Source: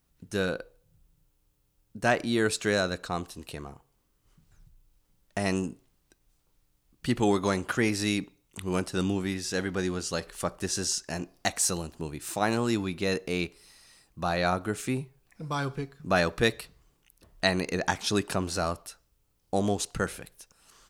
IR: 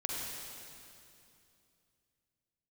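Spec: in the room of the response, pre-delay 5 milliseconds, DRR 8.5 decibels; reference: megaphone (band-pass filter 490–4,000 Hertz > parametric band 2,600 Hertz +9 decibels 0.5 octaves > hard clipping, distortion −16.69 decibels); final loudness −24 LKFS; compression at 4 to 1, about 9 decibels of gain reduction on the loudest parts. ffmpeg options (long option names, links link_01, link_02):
-filter_complex "[0:a]acompressor=threshold=-30dB:ratio=4,asplit=2[link_01][link_02];[1:a]atrim=start_sample=2205,adelay=5[link_03];[link_02][link_03]afir=irnorm=-1:irlink=0,volume=-12.5dB[link_04];[link_01][link_04]amix=inputs=2:normalize=0,highpass=490,lowpass=4000,equalizer=frequency=2600:width_type=o:width=0.5:gain=9,asoftclip=type=hard:threshold=-25dB,volume=13.5dB"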